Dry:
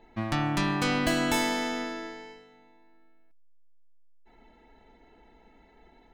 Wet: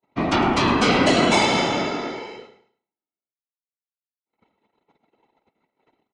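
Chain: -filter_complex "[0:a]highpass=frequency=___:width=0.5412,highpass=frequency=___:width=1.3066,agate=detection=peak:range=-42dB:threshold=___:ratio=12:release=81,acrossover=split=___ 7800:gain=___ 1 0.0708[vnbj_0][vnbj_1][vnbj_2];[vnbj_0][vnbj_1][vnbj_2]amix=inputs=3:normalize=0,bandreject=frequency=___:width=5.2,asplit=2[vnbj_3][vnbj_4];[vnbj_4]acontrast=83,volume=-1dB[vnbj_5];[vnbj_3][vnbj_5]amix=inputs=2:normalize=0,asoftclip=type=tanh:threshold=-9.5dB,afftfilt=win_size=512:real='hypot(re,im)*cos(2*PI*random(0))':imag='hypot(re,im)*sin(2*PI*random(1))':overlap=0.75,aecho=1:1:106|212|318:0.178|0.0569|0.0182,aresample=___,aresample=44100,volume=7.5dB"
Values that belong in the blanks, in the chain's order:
45, 45, -56dB, 170, 0.0891, 1.7k, 22050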